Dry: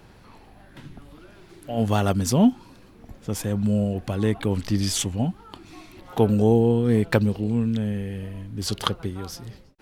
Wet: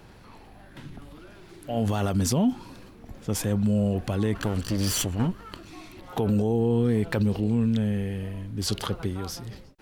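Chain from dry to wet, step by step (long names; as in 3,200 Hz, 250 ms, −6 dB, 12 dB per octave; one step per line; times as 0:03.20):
0:04.35–0:05.67: lower of the sound and its delayed copy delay 0.68 ms
transient designer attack 0 dB, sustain +4 dB
brickwall limiter −15.5 dBFS, peak gain reduction 11 dB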